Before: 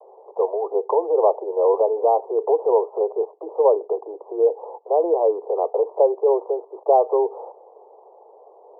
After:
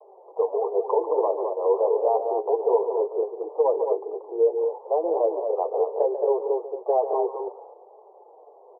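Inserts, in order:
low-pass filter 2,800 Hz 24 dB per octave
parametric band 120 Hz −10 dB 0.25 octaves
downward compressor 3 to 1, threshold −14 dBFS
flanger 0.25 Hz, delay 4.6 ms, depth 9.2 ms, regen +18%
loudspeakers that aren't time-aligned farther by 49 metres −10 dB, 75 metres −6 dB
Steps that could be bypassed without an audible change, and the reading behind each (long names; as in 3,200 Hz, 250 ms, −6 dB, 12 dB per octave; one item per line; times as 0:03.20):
low-pass filter 2,800 Hz: nothing at its input above 1,100 Hz
parametric band 120 Hz: nothing at its input below 300 Hz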